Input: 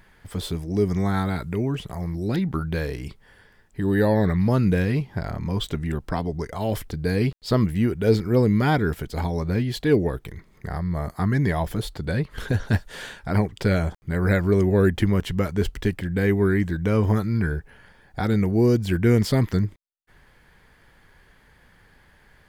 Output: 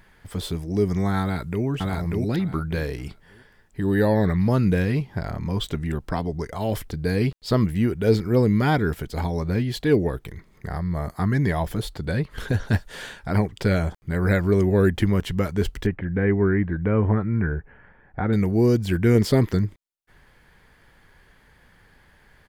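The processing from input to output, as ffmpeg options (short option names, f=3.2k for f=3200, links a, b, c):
-filter_complex "[0:a]asplit=2[a][b];[b]afade=t=in:st=1.21:d=0.01,afade=t=out:st=1.65:d=0.01,aecho=0:1:590|1180|1770:0.891251|0.17825|0.03565[c];[a][c]amix=inputs=2:normalize=0,asettb=1/sr,asplit=3[d][e][f];[d]atrim=end=15.864[g];[e]atrim=start=15.86:end=18.33,asetpts=PTS-STARTPTS,afade=t=in:d=0.004:c=qsin,afade=t=out:st=2.466:d=0.004:c=qsin,lowpass=f=2.2k:w=0.5412,lowpass=f=2.2k:w=1.3066[h];[f]atrim=start=18.326[i];[g][h]acrossfade=d=0.004:c1=hsin:c2=qsin[j];[j][i]acrossfade=d=0.004:c1=qsin:c2=hsin,asettb=1/sr,asplit=3[k][l][m];[k]atrim=end=19.154[n];[l]atrim=start=19.15:end=19.55,asetpts=PTS-STARTPTS,afade=t=in:d=0.004:c=qsin,afade=t=out:st=0.396:d=0.004:c=qsin,equalizer=f=390:w=1.5:g=6[o];[m]atrim=start=19.546[p];[n][o]acrossfade=d=0.004:c1=hsin:c2=qsin[q];[q][p]acrossfade=d=0.004:c1=qsin:c2=hsin"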